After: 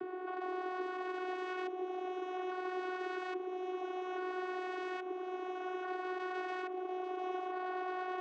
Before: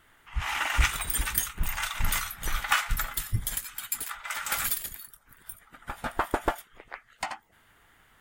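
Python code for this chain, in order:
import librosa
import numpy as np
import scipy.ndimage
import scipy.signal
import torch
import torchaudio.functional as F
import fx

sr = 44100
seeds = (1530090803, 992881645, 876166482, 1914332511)

p1 = fx.bin_compress(x, sr, power=0.6)
p2 = fx.over_compress(p1, sr, threshold_db=-31.0, ratio=-0.5)
p3 = p1 + F.gain(torch.from_numpy(p2), -3.0).numpy()
p4 = fx.echo_swell(p3, sr, ms=108, loudest=8, wet_db=-14.5)
p5 = (np.mod(10.0 ** (19.5 / 20.0) * p4 + 1.0, 2.0) - 1.0) / 10.0 ** (19.5 / 20.0)
p6 = fx.filter_lfo_lowpass(p5, sr, shape='saw_up', hz=0.6, low_hz=580.0, high_hz=2000.0, q=0.85)
p7 = 10.0 ** (-29.5 / 20.0) * np.tanh(p6 / 10.0 ** (-29.5 / 20.0))
p8 = fx.vocoder(p7, sr, bands=16, carrier='saw', carrier_hz=368.0)
p9 = scipy.signal.sosfilt(scipy.signal.butter(2, 150.0, 'highpass', fs=sr, output='sos'), p8)
p10 = p9 + 10.0 ** (-11.0 / 20.0) * np.pad(p9, (int(840 * sr / 1000.0), 0))[:len(p9)]
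p11 = fx.band_squash(p10, sr, depth_pct=70)
y = F.gain(torch.from_numpy(p11), -3.0).numpy()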